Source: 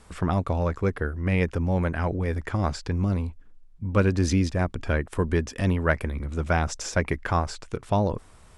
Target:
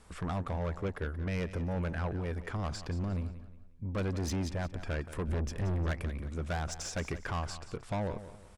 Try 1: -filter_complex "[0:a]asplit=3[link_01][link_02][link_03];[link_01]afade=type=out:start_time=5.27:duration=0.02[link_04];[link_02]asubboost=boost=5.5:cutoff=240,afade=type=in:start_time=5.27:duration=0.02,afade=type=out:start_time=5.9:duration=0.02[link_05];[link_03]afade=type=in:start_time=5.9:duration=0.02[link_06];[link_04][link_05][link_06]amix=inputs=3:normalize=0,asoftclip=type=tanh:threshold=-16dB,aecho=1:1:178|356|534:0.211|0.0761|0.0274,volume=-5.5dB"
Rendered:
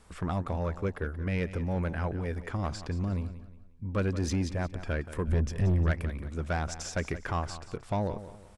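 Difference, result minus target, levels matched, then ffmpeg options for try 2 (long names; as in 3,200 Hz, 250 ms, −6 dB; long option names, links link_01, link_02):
soft clipping: distortion −4 dB
-filter_complex "[0:a]asplit=3[link_01][link_02][link_03];[link_01]afade=type=out:start_time=5.27:duration=0.02[link_04];[link_02]asubboost=boost=5.5:cutoff=240,afade=type=in:start_time=5.27:duration=0.02,afade=type=out:start_time=5.9:duration=0.02[link_05];[link_03]afade=type=in:start_time=5.9:duration=0.02[link_06];[link_04][link_05][link_06]amix=inputs=3:normalize=0,asoftclip=type=tanh:threshold=-24dB,aecho=1:1:178|356|534:0.211|0.0761|0.0274,volume=-5.5dB"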